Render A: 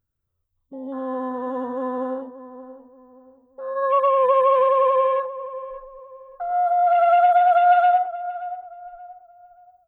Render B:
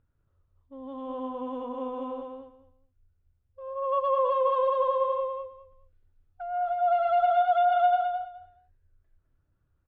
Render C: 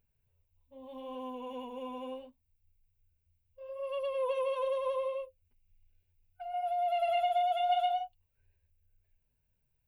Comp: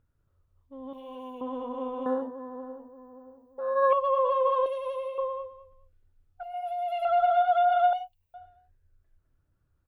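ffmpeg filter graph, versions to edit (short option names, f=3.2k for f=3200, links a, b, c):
-filter_complex "[2:a]asplit=4[a][b][c][d];[1:a]asplit=6[e][f][g][h][i][j];[e]atrim=end=0.932[k];[a]atrim=start=0.928:end=1.412[l];[f]atrim=start=1.408:end=2.062[m];[0:a]atrim=start=2.058:end=3.932[n];[g]atrim=start=3.928:end=4.662[o];[b]atrim=start=4.658:end=5.182[p];[h]atrim=start=5.178:end=6.432[q];[c]atrim=start=6.428:end=7.052[r];[i]atrim=start=7.048:end=7.932[s];[d]atrim=start=7.928:end=8.342[t];[j]atrim=start=8.338[u];[k][l]acrossfade=d=0.004:c1=hsin:c2=hsin[v];[v][m]acrossfade=d=0.004:c1=hsin:c2=hsin[w];[w][n]acrossfade=d=0.004:c1=hsin:c2=hsin[x];[x][o]acrossfade=d=0.004:c1=hsin:c2=hsin[y];[y][p]acrossfade=d=0.004:c1=hsin:c2=hsin[z];[z][q]acrossfade=d=0.004:c1=hsin:c2=hsin[aa];[aa][r]acrossfade=d=0.004:c1=hsin:c2=hsin[ab];[ab][s]acrossfade=d=0.004:c1=hsin:c2=hsin[ac];[ac][t]acrossfade=d=0.004:c1=hsin:c2=hsin[ad];[ad][u]acrossfade=d=0.004:c1=hsin:c2=hsin"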